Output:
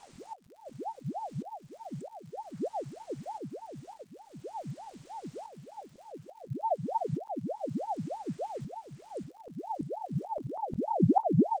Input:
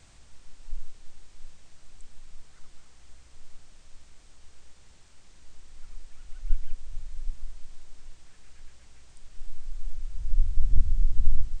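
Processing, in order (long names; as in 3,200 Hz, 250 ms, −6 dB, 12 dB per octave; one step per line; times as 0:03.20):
volume swells 761 ms
surface crackle 180 per second −53 dBFS
double-tracking delay 23 ms −13.5 dB
single-tap delay 659 ms −6.5 dB
ring modulator whose carrier an LFO sweeps 520 Hz, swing 75%, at 3.3 Hz
level +2.5 dB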